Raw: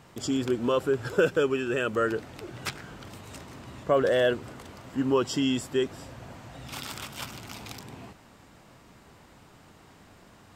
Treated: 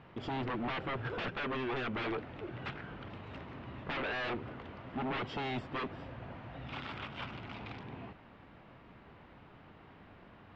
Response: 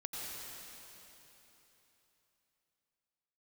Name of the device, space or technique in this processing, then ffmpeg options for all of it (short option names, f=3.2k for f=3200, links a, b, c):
synthesiser wavefolder: -af "aeval=exprs='0.0376*(abs(mod(val(0)/0.0376+3,4)-2)-1)':c=same,lowpass=f=3.1k:w=0.5412,lowpass=f=3.1k:w=1.3066,volume=-2dB"